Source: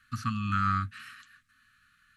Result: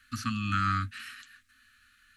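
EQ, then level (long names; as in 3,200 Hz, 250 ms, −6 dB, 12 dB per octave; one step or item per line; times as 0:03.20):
phaser with its sweep stopped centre 360 Hz, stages 4
+6.0 dB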